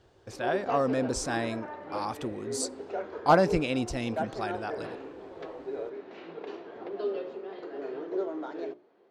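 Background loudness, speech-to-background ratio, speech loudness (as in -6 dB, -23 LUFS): -37.5 LUFS, 7.5 dB, -30.0 LUFS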